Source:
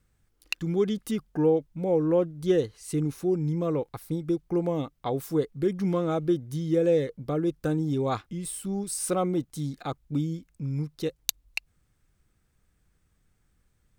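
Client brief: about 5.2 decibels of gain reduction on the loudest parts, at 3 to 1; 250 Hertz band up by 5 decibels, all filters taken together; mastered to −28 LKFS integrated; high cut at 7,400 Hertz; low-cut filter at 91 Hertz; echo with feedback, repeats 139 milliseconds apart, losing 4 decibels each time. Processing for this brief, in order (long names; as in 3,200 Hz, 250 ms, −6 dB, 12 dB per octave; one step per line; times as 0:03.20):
high-pass filter 91 Hz
low-pass filter 7,400 Hz
parametric band 250 Hz +8 dB
downward compressor 3 to 1, threshold −22 dBFS
repeating echo 139 ms, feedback 63%, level −4 dB
level −2 dB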